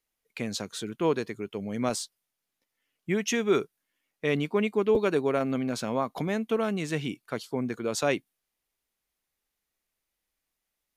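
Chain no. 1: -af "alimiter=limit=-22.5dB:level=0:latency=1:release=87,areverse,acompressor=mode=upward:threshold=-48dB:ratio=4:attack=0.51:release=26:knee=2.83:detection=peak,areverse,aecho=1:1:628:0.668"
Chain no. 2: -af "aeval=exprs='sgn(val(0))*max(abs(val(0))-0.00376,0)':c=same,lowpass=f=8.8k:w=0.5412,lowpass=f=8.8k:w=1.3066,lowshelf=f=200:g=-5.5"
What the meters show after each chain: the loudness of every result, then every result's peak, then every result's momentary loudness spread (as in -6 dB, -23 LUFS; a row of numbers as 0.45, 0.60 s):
-33.0, -31.0 LUFS; -18.0, -12.5 dBFS; 8, 12 LU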